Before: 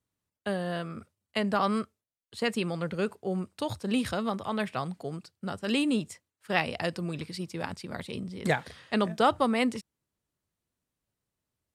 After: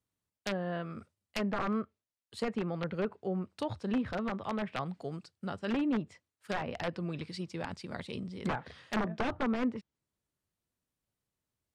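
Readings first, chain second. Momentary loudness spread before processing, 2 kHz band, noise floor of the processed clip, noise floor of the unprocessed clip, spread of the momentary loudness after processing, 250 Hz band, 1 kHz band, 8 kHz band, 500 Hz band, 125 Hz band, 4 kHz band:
13 LU, −6.5 dB, below −85 dBFS, below −85 dBFS, 10 LU, −3.5 dB, −7.0 dB, can't be measured, −5.5 dB, −3.5 dB, −9.0 dB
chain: wrap-around overflow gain 19 dB
treble cut that deepens with the level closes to 1,500 Hz, closed at −25.5 dBFS
level −3 dB

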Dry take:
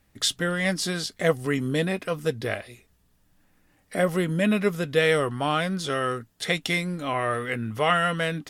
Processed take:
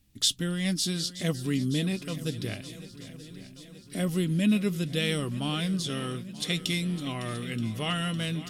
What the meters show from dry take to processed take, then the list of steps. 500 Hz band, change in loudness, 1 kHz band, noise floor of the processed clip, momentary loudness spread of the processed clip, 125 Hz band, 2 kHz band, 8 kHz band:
−10.5 dB, −4.0 dB, −13.0 dB, −49 dBFS, 17 LU, 0.0 dB, −9.5 dB, 0.0 dB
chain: flat-topped bell 940 Hz −13 dB 2.6 octaves
feedback echo with a long and a short gap by turns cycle 927 ms, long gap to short 1.5 to 1, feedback 59%, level −16 dB

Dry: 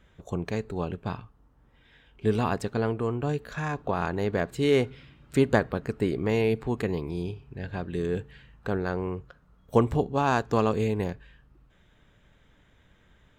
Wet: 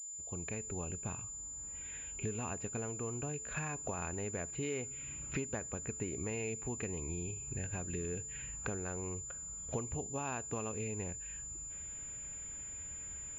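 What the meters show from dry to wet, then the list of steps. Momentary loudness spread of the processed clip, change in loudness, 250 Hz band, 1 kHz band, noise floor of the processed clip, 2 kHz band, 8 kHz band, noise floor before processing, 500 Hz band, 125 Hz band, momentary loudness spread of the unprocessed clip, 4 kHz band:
4 LU, −11.5 dB, −14.0 dB, −15.0 dB, −46 dBFS, −11.0 dB, +15.0 dB, −62 dBFS, −15.0 dB, −11.5 dB, 12 LU, −15.5 dB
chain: fade in at the beginning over 1.67 s
parametric band 77 Hz +9.5 dB 0.42 octaves
downward compressor 6 to 1, threshold −40 dBFS, peak gain reduction 22.5 dB
parametric band 2,500 Hz +11.5 dB 0.35 octaves
switching amplifier with a slow clock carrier 7,100 Hz
level +2 dB

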